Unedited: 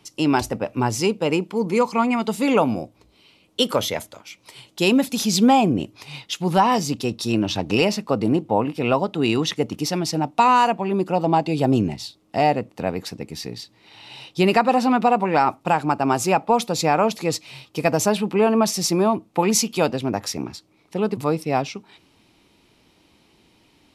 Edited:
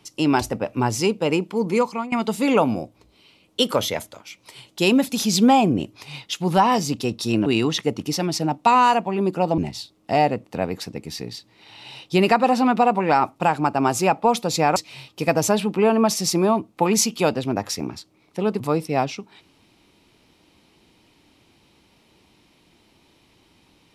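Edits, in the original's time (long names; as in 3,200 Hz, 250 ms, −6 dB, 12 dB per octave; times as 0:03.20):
0:01.76–0:02.12: fade out, to −17.5 dB
0:07.46–0:09.19: remove
0:11.31–0:11.83: remove
0:17.01–0:17.33: remove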